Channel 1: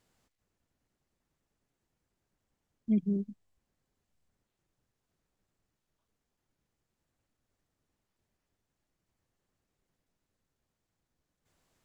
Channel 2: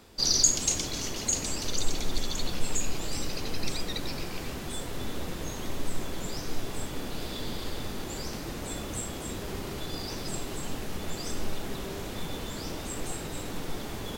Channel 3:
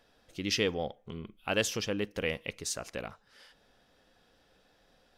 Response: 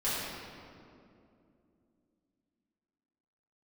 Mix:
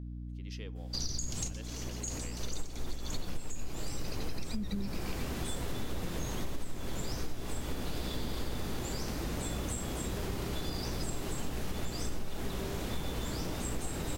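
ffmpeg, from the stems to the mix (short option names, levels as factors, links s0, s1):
-filter_complex "[0:a]adelay=1650,volume=1.33[s0];[1:a]adynamicequalizer=threshold=0.00631:dfrequency=3700:dqfactor=0.88:tfrequency=3700:tqfactor=0.88:attack=5:release=100:ratio=0.375:range=2:mode=cutabove:tftype=bell,adelay=750,volume=1.12[s1];[2:a]volume=0.106,asplit=2[s2][s3];[s3]apad=whole_len=658345[s4];[s1][s4]sidechaincompress=threshold=0.00126:ratio=12:attack=27:release=268[s5];[s0][s5][s2]amix=inputs=3:normalize=0,acrossover=split=160[s6][s7];[s7]acompressor=threshold=0.0178:ratio=6[s8];[s6][s8]amix=inputs=2:normalize=0,aeval=exprs='val(0)+0.01*(sin(2*PI*60*n/s)+sin(2*PI*2*60*n/s)/2+sin(2*PI*3*60*n/s)/3+sin(2*PI*4*60*n/s)/4+sin(2*PI*5*60*n/s)/5)':c=same,acompressor=threshold=0.0355:ratio=10"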